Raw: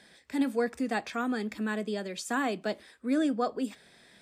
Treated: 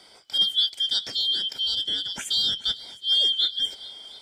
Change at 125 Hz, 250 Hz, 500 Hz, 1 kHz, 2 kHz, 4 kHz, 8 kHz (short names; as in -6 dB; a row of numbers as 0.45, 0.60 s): n/a, -21.5 dB, -17.5 dB, -15.0 dB, -7.5 dB, +26.0 dB, +6.0 dB